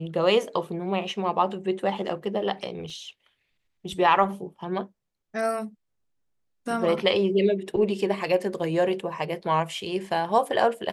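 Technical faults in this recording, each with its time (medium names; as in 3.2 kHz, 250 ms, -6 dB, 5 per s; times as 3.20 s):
2.90 s: dropout 2.5 ms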